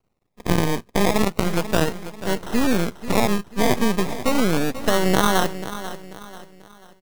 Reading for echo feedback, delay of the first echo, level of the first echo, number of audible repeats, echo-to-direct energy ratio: 39%, 0.489 s, -13.0 dB, 3, -12.5 dB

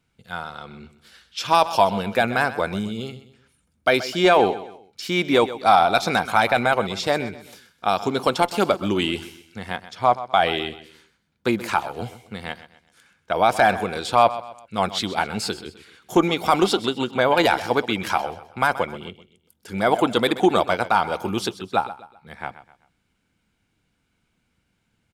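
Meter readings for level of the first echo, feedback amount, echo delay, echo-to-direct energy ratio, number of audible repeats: -15.0 dB, 37%, 0.128 s, -14.5 dB, 3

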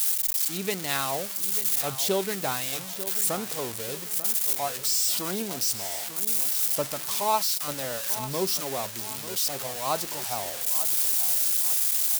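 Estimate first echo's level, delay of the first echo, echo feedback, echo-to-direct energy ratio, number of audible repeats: -13.0 dB, 0.892 s, 41%, -12.0 dB, 3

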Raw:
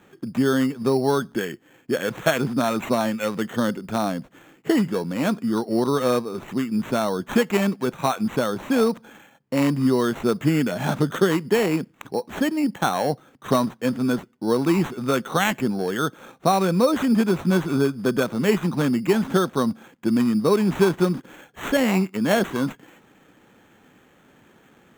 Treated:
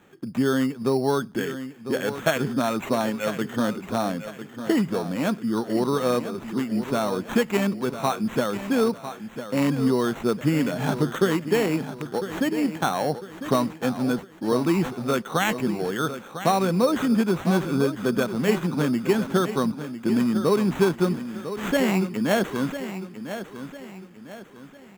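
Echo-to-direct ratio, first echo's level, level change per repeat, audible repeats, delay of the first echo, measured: -10.5 dB, -11.0 dB, -8.0 dB, 3, 1.001 s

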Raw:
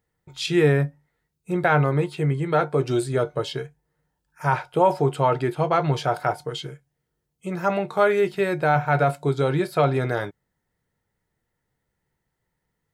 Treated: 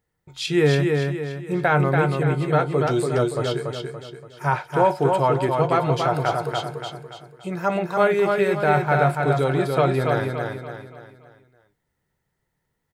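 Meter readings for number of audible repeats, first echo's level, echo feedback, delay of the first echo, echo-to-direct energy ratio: 5, -4.0 dB, 42%, 0.286 s, -3.0 dB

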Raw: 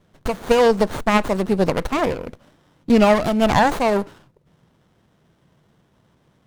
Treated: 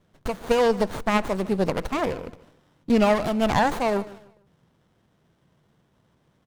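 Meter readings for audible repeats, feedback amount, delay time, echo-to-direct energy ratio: 2, 31%, 0.151 s, -18.5 dB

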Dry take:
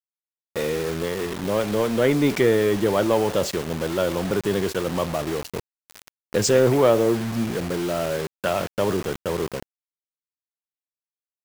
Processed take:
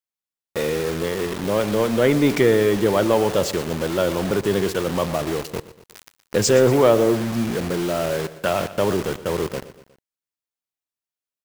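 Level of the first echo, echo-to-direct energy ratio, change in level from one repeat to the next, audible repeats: -16.0 dB, -14.5 dB, -5.5 dB, 3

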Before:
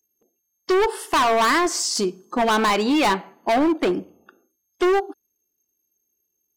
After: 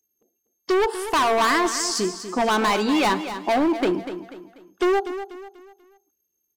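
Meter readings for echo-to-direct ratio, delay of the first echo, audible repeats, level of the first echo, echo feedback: -10.5 dB, 0.244 s, 3, -11.0 dB, 38%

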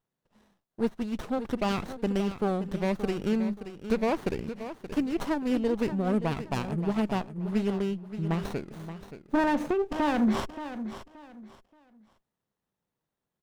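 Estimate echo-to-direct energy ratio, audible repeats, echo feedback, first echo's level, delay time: -11.0 dB, 3, 26%, -11.5 dB, 0.576 s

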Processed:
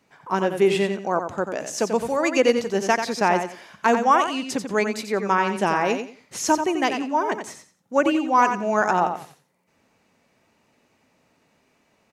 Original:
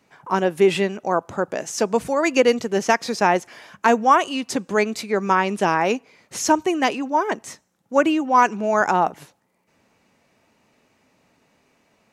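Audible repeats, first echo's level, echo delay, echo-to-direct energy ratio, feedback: 3, -7.5 dB, 89 ms, -7.5 dB, 23%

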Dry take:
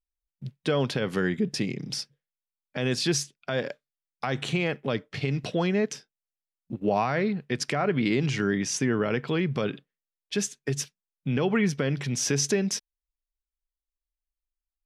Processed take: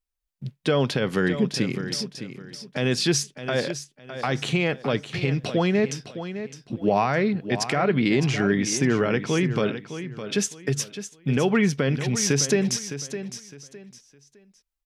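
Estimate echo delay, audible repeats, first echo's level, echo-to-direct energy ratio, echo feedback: 0.61 s, 3, -11.0 dB, -10.5 dB, 27%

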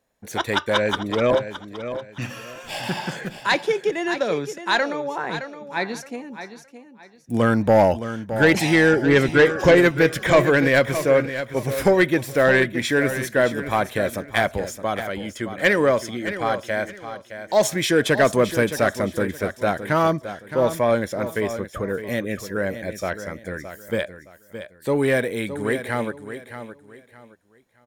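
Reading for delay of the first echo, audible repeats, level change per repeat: 0.617 s, 3, -11.5 dB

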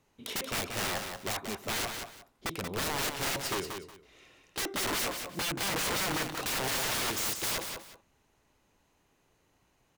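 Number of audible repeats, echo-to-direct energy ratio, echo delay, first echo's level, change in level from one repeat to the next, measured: 2, -6.5 dB, 0.182 s, -6.5 dB, -12.5 dB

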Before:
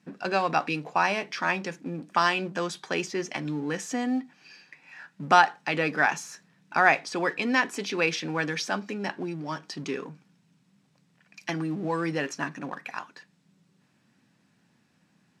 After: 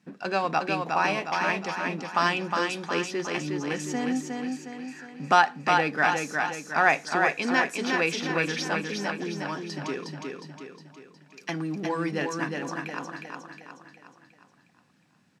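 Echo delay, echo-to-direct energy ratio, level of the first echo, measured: 0.361 s, -3.0 dB, -4.0 dB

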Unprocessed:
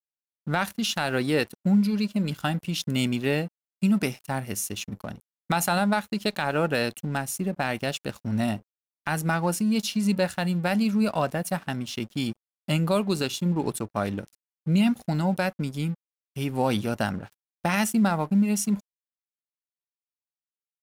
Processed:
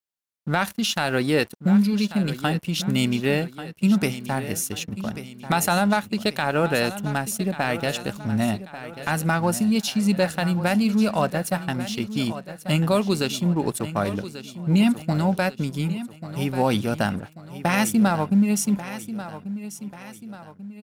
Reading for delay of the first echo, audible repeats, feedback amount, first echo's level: 1.139 s, 4, 44%, -13.0 dB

